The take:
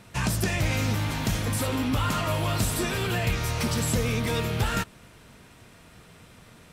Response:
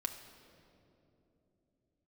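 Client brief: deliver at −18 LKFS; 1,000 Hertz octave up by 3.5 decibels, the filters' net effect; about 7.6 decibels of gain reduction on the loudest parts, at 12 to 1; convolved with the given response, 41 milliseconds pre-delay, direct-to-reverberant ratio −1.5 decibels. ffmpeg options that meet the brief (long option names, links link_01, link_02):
-filter_complex "[0:a]equalizer=frequency=1000:width_type=o:gain=4.5,acompressor=threshold=-28dB:ratio=12,asplit=2[link_01][link_02];[1:a]atrim=start_sample=2205,adelay=41[link_03];[link_02][link_03]afir=irnorm=-1:irlink=0,volume=1.5dB[link_04];[link_01][link_04]amix=inputs=2:normalize=0,volume=10dB"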